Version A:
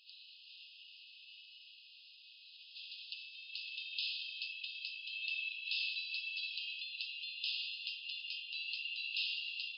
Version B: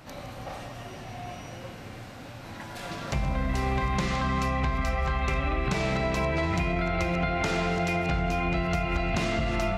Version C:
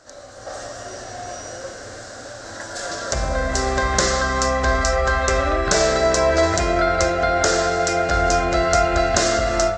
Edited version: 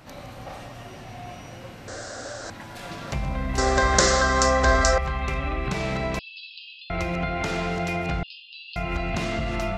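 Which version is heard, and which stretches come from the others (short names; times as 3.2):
B
1.88–2.5 from C
3.58–4.98 from C
6.19–6.9 from A
8.23–8.76 from A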